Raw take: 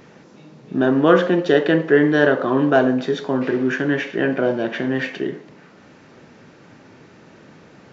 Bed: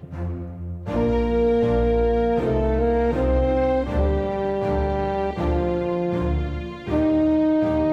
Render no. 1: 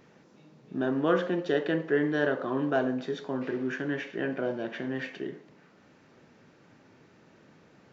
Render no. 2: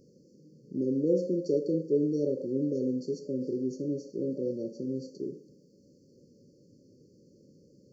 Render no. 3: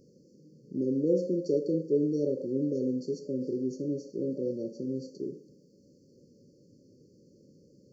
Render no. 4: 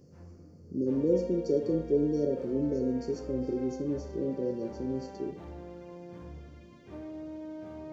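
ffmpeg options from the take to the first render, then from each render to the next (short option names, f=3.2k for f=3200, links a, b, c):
-af "volume=-11.5dB"
-af "afftfilt=real='re*(1-between(b*sr/4096,590,4300))':imag='im*(1-between(b*sr/4096,590,4300))':win_size=4096:overlap=0.75,adynamicequalizer=threshold=0.00126:dfrequency=5500:dqfactor=0.7:tfrequency=5500:tqfactor=0.7:attack=5:release=100:ratio=0.375:range=2.5:mode=boostabove:tftype=highshelf"
-af anull
-filter_complex "[1:a]volume=-22.5dB[a];[0:a][a]amix=inputs=2:normalize=0"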